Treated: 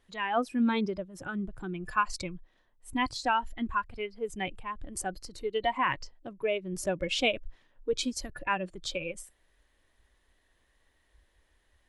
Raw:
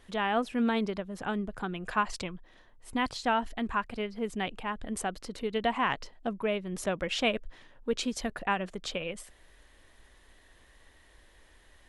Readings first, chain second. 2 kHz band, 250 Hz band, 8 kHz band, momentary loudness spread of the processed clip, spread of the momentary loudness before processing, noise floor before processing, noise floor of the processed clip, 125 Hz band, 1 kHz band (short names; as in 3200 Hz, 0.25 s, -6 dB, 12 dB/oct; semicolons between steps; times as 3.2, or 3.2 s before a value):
+0.5 dB, -1.0 dB, +2.0 dB, 11 LU, 9 LU, -60 dBFS, -71 dBFS, -1.0 dB, +0.5 dB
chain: spectral noise reduction 13 dB; gain +2 dB